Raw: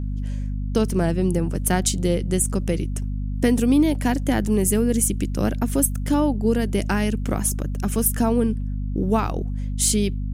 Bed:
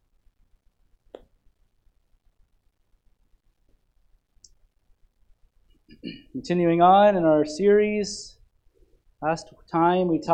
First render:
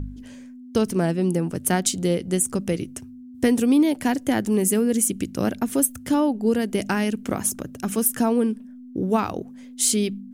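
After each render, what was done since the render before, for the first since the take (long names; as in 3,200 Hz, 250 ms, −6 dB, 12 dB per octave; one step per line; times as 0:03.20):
hum removal 50 Hz, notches 4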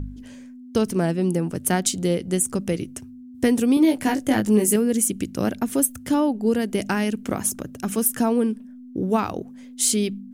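0:03.75–0:04.76: double-tracking delay 19 ms −4 dB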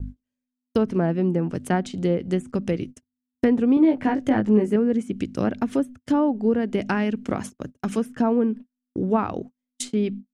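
treble cut that deepens with the level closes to 1,700 Hz, closed at −17 dBFS
noise gate −33 dBFS, range −44 dB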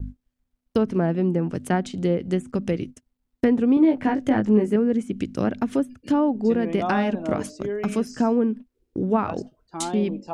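mix in bed −11 dB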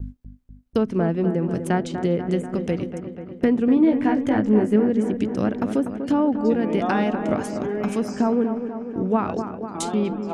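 delay with a low-pass on its return 244 ms, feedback 66%, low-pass 2,000 Hz, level −8.5 dB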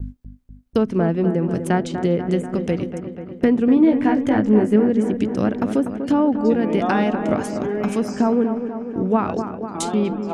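level +2.5 dB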